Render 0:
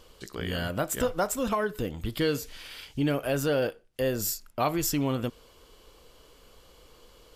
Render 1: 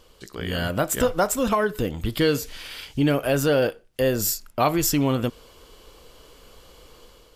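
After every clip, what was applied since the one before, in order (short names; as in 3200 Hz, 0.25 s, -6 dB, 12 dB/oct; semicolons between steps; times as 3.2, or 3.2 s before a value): AGC gain up to 6 dB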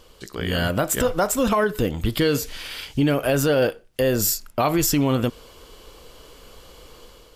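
limiter -14.5 dBFS, peak gain reduction 6 dB; gain +3.5 dB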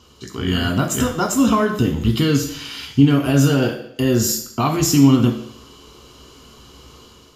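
reverb RT60 0.70 s, pre-delay 3 ms, DRR 1.5 dB; gain -5.5 dB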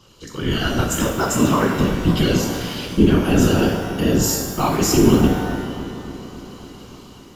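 whisperiser; analogue delay 0.279 s, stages 4096, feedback 69%, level -13 dB; shimmer reverb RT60 1.2 s, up +12 st, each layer -8 dB, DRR 5.5 dB; gain -1.5 dB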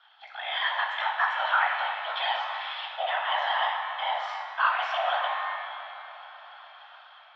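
mistuned SSB +330 Hz 500–3100 Hz; gain -2 dB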